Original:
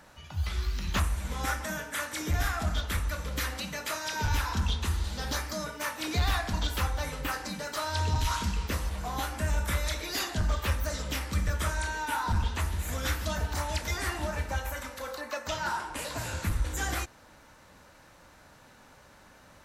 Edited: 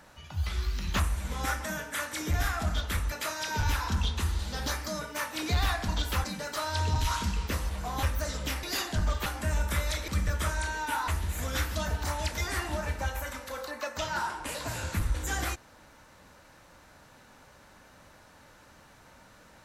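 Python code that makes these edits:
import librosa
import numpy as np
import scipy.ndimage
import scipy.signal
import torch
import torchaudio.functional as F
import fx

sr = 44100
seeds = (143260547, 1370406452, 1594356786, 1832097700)

y = fx.edit(x, sr, fx.cut(start_s=3.12, length_s=0.65),
    fx.cut(start_s=6.89, length_s=0.55),
    fx.swap(start_s=9.23, length_s=0.82, other_s=10.68, other_length_s=0.6),
    fx.cut(start_s=12.28, length_s=0.3), tone=tone)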